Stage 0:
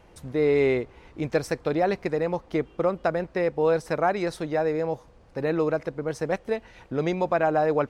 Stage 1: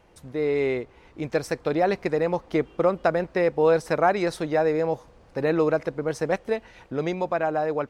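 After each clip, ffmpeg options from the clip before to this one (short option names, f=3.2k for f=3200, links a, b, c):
-af "lowshelf=f=170:g=-3.5,dynaudnorm=f=350:g=9:m=6dB,volume=-2.5dB"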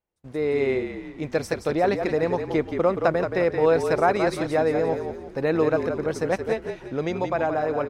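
-filter_complex "[0:a]asplit=6[a][b][c][d][e][f];[b]adelay=174,afreqshift=-42,volume=-7dB[g];[c]adelay=348,afreqshift=-84,volume=-14.5dB[h];[d]adelay=522,afreqshift=-126,volume=-22.1dB[i];[e]adelay=696,afreqshift=-168,volume=-29.6dB[j];[f]adelay=870,afreqshift=-210,volume=-37.1dB[k];[a][g][h][i][j][k]amix=inputs=6:normalize=0,agate=range=-31dB:threshold=-43dB:ratio=16:detection=peak"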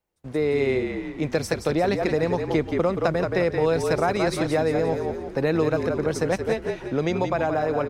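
-filter_complex "[0:a]acrossover=split=200|3000[a][b][c];[b]acompressor=threshold=-27dB:ratio=3[d];[a][d][c]amix=inputs=3:normalize=0,volume=5dB"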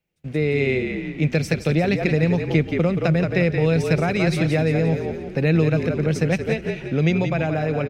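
-af "equalizer=f=160:t=o:w=0.67:g=12,equalizer=f=1k:t=o:w=0.67:g=-9,equalizer=f=2.5k:t=o:w=0.67:g=10,equalizer=f=10k:t=o:w=0.67:g=-4,aecho=1:1:253:0.0794"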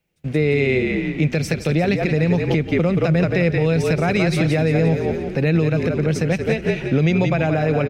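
-af "alimiter=limit=-14.5dB:level=0:latency=1:release=180,volume=6dB"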